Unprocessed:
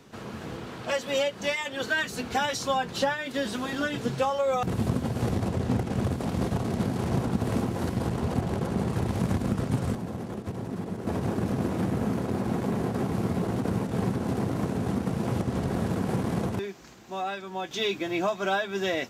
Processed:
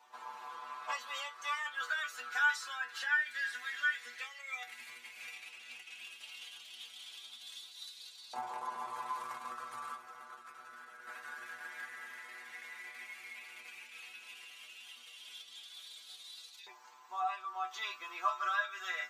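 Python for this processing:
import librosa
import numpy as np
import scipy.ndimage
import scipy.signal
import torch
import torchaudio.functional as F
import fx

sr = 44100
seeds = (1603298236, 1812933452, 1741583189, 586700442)

y = fx.filter_lfo_highpass(x, sr, shape='saw_up', hz=0.12, low_hz=910.0, high_hz=4100.0, q=6.3)
y = fx.stiff_resonator(y, sr, f0_hz=120.0, decay_s=0.25, stiffness=0.002)
y = y * 10.0 ** (-1.0 / 20.0)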